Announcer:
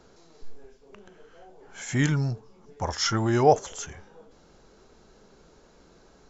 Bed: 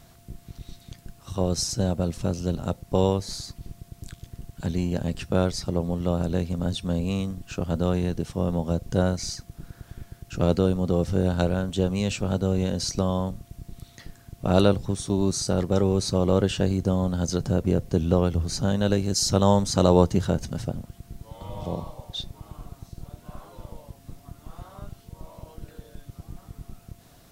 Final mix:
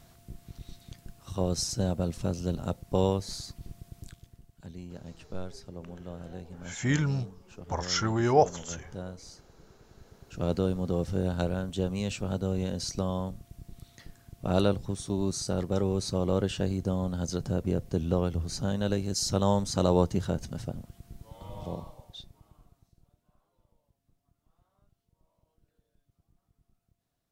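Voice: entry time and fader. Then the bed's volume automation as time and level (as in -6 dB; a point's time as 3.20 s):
4.90 s, -3.0 dB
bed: 3.99 s -4 dB
4.48 s -17 dB
9.84 s -17 dB
10.57 s -6 dB
21.72 s -6 dB
23.37 s -29 dB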